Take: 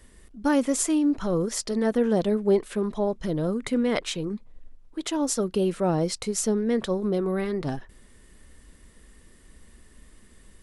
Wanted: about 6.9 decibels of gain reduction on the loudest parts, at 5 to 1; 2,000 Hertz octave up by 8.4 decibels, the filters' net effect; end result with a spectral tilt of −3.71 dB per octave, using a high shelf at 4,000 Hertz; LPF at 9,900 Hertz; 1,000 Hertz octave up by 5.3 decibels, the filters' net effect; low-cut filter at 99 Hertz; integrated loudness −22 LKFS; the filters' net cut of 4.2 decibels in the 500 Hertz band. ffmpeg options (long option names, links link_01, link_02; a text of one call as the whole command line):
ffmpeg -i in.wav -af "highpass=99,lowpass=9900,equalizer=frequency=500:width_type=o:gain=-7.5,equalizer=frequency=1000:width_type=o:gain=7.5,equalizer=frequency=2000:width_type=o:gain=7,highshelf=frequency=4000:gain=6,acompressor=threshold=-25dB:ratio=5,volume=7.5dB" out.wav